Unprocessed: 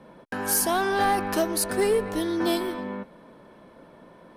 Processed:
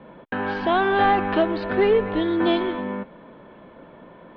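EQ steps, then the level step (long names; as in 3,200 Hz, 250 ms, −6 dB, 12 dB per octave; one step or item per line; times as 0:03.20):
Butterworth low-pass 3,600 Hz 48 dB per octave
+4.5 dB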